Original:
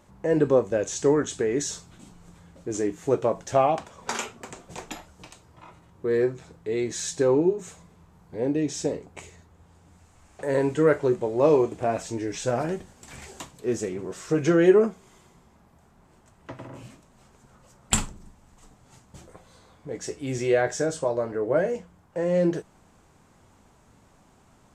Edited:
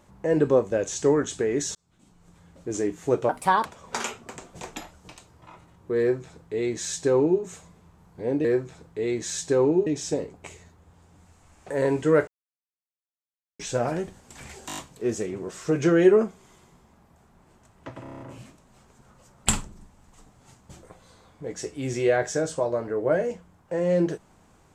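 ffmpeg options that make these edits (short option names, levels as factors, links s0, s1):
-filter_complex "[0:a]asplit=19[s0][s1][s2][s3][s4][s5][s6][s7][s8][s9][s10][s11][s12][s13][s14][s15][s16][s17][s18];[s0]atrim=end=1.75,asetpts=PTS-STARTPTS,afade=t=out:st=1.746:d=0.004:c=hsin[s19];[s1]atrim=start=1.75:end=3.294,asetpts=PTS-STARTPTS,afade=t=in:d=0.95[s20];[s2]atrim=start=3.29:end=3.8,asetpts=PTS-STARTPTS,asetrate=61740,aresample=44100,atrim=end_sample=16065,asetpts=PTS-STARTPTS[s21];[s3]atrim=start=3.796:end=8.592[s22];[s4]atrim=start=6.138:end=7.562[s23];[s5]atrim=start=8.588:end=11,asetpts=PTS-STARTPTS,afade=t=out:st=2.408:d=0.004:c=hsin[s24];[s6]atrim=start=11:end=12.32,asetpts=PTS-STARTPTS,volume=0[s25];[s7]atrim=start=12.32:end=13.422,asetpts=PTS-STARTPTS,afade=t=in:d=0.004:c=hsin[s26];[s8]atrim=start=13.398:end=13.422[s27];[s9]atrim=start=13.398:end=13.422[s28];[s10]atrim=start=13.398:end=13.422[s29];[s11]atrim=start=13.398:end=13.422[s30];[s12]atrim=start=13.398:end=16.682[s31];[s13]atrim=start=16.648:end=16.682[s32];[s14]atrim=start=16.648:end=16.682[s33];[s15]atrim=start=16.648:end=16.682[s34];[s16]atrim=start=16.648:end=16.682[s35];[s17]atrim=start=16.648:end=16.682[s36];[s18]atrim=start=16.648[s37];[s19][s20]concat=n=2:v=0:a=1[s38];[s38][s21]acrossfade=d=0.004:c1=hsin:c2=hsin[s39];[s39][s22]acrossfade=d=0.004:c1=hsin:c2=hsin[s40];[s40][s23]acrossfade=d=0.004:c1=hsin:c2=hsin[s41];[s24][s25][s26]concat=n=3:v=0:a=1[s42];[s41][s42]acrossfade=d=0.004:c1=hsin:c2=hsin[s43];[s43][s27]acrossfade=d=0.004:c1=hsin:c2=hsin[s44];[s44][s28]acrossfade=d=0.004:c1=hsin:c2=hsin[s45];[s45][s29]acrossfade=d=0.004:c1=hsin:c2=hsin[s46];[s46][s30]acrossfade=d=0.004:c1=hsin:c2=hsin[s47];[s47][s31]acrossfade=d=0.004:c1=hsin:c2=hsin[s48];[s48][s32]acrossfade=d=0.004:c1=hsin:c2=hsin[s49];[s49][s33]acrossfade=d=0.004:c1=hsin:c2=hsin[s50];[s50][s34]acrossfade=d=0.004:c1=hsin:c2=hsin[s51];[s51][s35]acrossfade=d=0.004:c1=hsin:c2=hsin[s52];[s52][s36]acrossfade=d=0.004:c1=hsin:c2=hsin[s53];[s53][s37]acrossfade=d=0.004:c1=hsin:c2=hsin"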